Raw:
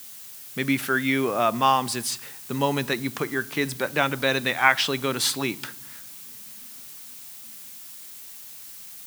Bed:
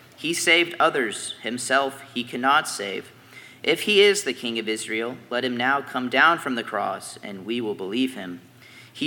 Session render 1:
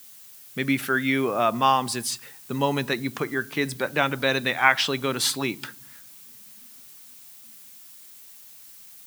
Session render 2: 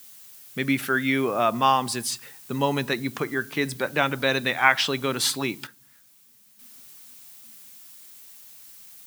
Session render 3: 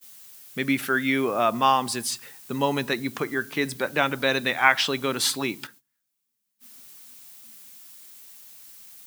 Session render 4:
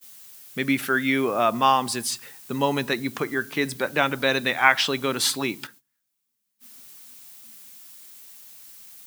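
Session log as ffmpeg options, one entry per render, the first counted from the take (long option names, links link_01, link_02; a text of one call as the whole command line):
ffmpeg -i in.wav -af "afftdn=noise_reduction=6:noise_floor=-42" out.wav
ffmpeg -i in.wav -filter_complex "[0:a]asplit=3[link_01][link_02][link_03];[link_01]atrim=end=5.67,asetpts=PTS-STARTPTS,afade=type=out:start_time=5.24:duration=0.43:curve=log:silence=0.334965[link_04];[link_02]atrim=start=5.67:end=6.59,asetpts=PTS-STARTPTS,volume=-9.5dB[link_05];[link_03]atrim=start=6.59,asetpts=PTS-STARTPTS,afade=type=in:duration=0.43:curve=log:silence=0.334965[link_06];[link_04][link_05][link_06]concat=n=3:v=0:a=1" out.wav
ffmpeg -i in.wav -af "agate=range=-22dB:threshold=-49dB:ratio=16:detection=peak,equalizer=frequency=130:width_type=o:width=0.59:gain=-3.5" out.wav
ffmpeg -i in.wav -af "volume=1dB" out.wav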